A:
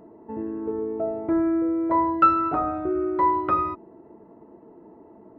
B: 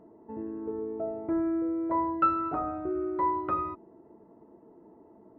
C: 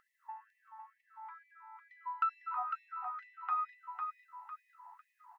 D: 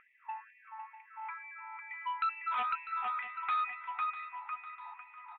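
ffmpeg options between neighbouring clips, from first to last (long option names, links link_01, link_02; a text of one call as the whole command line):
ffmpeg -i in.wav -af "highshelf=frequency=2900:gain=-8.5,volume=-6dB" out.wav
ffmpeg -i in.wav -af "acompressor=threshold=-42dB:ratio=3,aecho=1:1:502|1004|1506|2008|2510:0.562|0.236|0.0992|0.0417|0.0175,afftfilt=real='re*gte(b*sr/1024,720*pow(1800/720,0.5+0.5*sin(2*PI*2.2*pts/sr)))':imag='im*gte(b*sr/1024,720*pow(1800/720,0.5+0.5*sin(2*PI*2.2*pts/sr)))':win_size=1024:overlap=0.75,volume=7.5dB" out.wav
ffmpeg -i in.wav -af "aresample=8000,asoftclip=type=tanh:threshold=-35.5dB,aresample=44100,lowpass=frequency=2400:width_type=q:width=14,aecho=1:1:648|1296|1944|2592:0.2|0.0898|0.0404|0.0182,volume=4.5dB" out.wav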